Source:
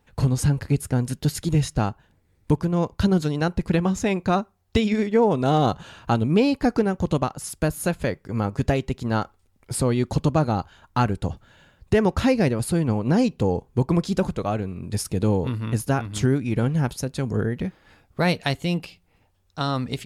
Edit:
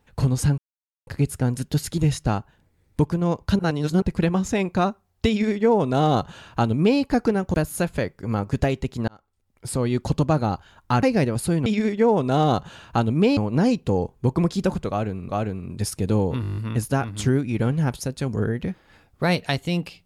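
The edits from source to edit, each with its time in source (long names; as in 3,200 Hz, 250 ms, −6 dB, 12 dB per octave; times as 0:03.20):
0:00.58: splice in silence 0.49 s
0:03.10–0:03.53: reverse
0:04.80–0:06.51: duplicate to 0:12.90
0:07.05–0:07.60: remove
0:09.14–0:10.06: fade in
0:11.09–0:12.27: remove
0:14.42–0:14.82: repeat, 2 plays
0:15.54: stutter 0.02 s, 9 plays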